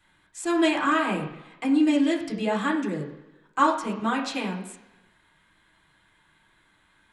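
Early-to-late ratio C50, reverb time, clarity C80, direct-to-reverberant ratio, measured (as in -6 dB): 7.5 dB, 1.0 s, 10.5 dB, -3.5 dB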